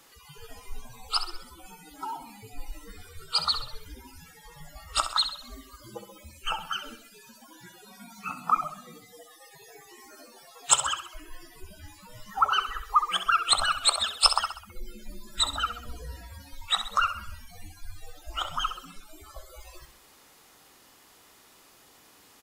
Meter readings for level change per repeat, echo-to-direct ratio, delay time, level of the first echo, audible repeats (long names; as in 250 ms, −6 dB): −6.5 dB, −9.0 dB, 65 ms, −10.0 dB, 4